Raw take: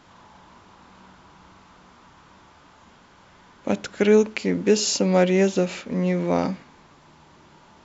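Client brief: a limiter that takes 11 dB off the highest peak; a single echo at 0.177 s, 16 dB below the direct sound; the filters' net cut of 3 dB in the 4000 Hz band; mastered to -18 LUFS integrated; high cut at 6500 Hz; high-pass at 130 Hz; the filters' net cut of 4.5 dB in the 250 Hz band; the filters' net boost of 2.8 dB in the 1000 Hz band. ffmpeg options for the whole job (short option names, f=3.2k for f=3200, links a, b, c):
-af "highpass=130,lowpass=6.5k,equalizer=f=250:t=o:g=-6,equalizer=f=1k:t=o:g=4.5,equalizer=f=4k:t=o:g=-3,alimiter=limit=-17dB:level=0:latency=1,aecho=1:1:177:0.158,volume=10dB"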